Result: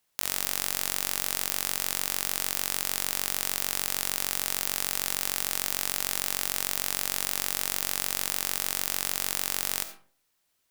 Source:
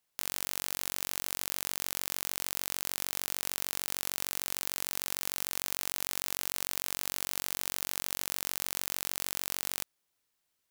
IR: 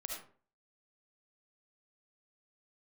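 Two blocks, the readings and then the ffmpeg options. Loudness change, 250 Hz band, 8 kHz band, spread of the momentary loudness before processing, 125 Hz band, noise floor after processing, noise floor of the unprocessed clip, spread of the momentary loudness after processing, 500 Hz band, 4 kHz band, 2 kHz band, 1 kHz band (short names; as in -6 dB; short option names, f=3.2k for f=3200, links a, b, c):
+6.0 dB, +5.0 dB, +6.0 dB, 0 LU, +5.5 dB, -74 dBFS, -80 dBFS, 0 LU, +4.5 dB, +5.5 dB, +6.0 dB, +6.0 dB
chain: -filter_complex "[0:a]asplit=2[a][b];[1:a]atrim=start_sample=2205[c];[b][c]afir=irnorm=-1:irlink=0,volume=-2dB[d];[a][d]amix=inputs=2:normalize=0,volume=2dB"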